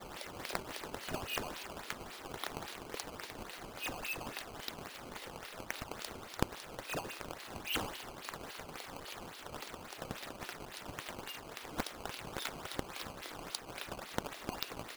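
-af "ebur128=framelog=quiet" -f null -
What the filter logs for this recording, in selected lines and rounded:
Integrated loudness:
  I:         -42.8 LUFS
  Threshold: -52.8 LUFS
Loudness range:
  LRA:         3.2 LU
  Threshold: -62.9 LUFS
  LRA low:   -44.8 LUFS
  LRA high:  -41.6 LUFS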